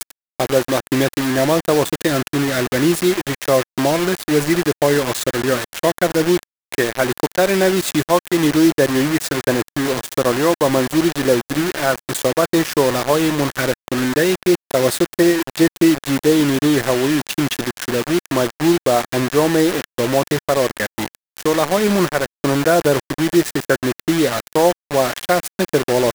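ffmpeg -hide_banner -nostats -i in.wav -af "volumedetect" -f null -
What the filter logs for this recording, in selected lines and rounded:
mean_volume: -17.5 dB
max_volume: -2.9 dB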